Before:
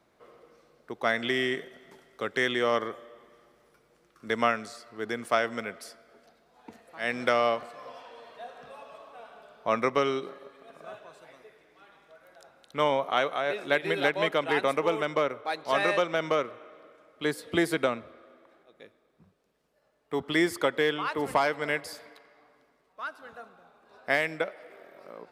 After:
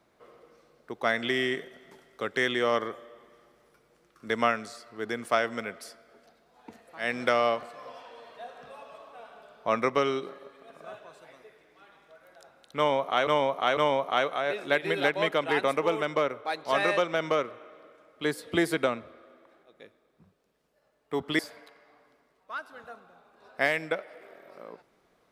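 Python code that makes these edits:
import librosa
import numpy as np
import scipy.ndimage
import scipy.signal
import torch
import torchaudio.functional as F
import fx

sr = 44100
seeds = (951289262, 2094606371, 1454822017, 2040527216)

y = fx.edit(x, sr, fx.repeat(start_s=12.77, length_s=0.5, count=3),
    fx.cut(start_s=20.39, length_s=1.49), tone=tone)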